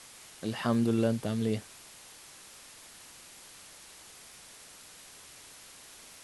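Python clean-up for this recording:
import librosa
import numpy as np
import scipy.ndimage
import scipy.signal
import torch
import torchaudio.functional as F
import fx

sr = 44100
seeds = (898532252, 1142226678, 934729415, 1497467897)

y = fx.fix_declick_ar(x, sr, threshold=10.0)
y = fx.noise_reduce(y, sr, print_start_s=3.67, print_end_s=4.17, reduce_db=25.0)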